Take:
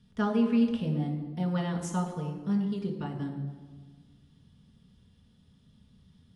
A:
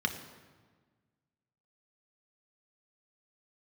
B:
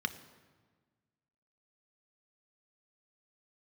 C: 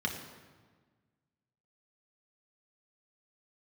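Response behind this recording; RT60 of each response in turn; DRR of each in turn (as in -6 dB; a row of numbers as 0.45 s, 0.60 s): C; 1.5 s, 1.5 s, 1.5 s; 4.5 dB, 9.5 dB, 0.5 dB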